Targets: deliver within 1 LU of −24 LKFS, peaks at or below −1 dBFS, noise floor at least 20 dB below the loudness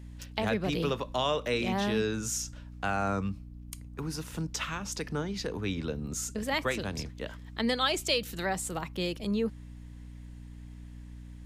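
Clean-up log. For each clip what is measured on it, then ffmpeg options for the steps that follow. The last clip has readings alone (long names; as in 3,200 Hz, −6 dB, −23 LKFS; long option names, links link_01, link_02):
mains hum 60 Hz; hum harmonics up to 300 Hz; level of the hum −43 dBFS; integrated loudness −32.0 LKFS; sample peak −13.5 dBFS; target loudness −24.0 LKFS
→ -af "bandreject=frequency=60:width_type=h:width=6,bandreject=frequency=120:width_type=h:width=6,bandreject=frequency=180:width_type=h:width=6,bandreject=frequency=240:width_type=h:width=6,bandreject=frequency=300:width_type=h:width=6"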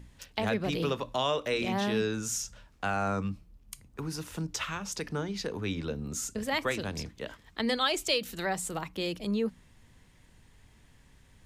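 mains hum none found; integrated loudness −32.0 LKFS; sample peak −13.5 dBFS; target loudness −24.0 LKFS
→ -af "volume=8dB"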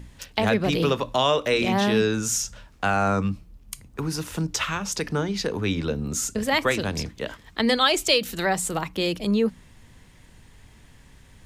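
integrated loudness −24.0 LKFS; sample peak −5.5 dBFS; background noise floor −52 dBFS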